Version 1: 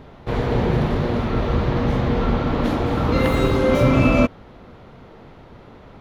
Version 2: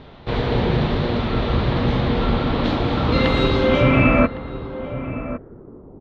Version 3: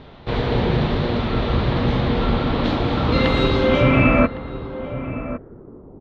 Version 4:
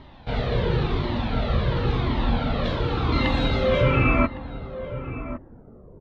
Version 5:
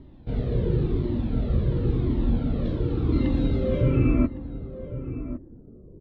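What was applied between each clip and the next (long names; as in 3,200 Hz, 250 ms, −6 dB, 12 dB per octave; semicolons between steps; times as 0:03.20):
low-pass filter sweep 3,900 Hz → 370 Hz, 0:03.60–0:05.56; slap from a distant wall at 190 metres, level −12 dB
no processing that can be heard
flanger whose copies keep moving one way falling 0.94 Hz
drawn EQ curve 230 Hz 0 dB, 320 Hz +4 dB, 810 Hz −16 dB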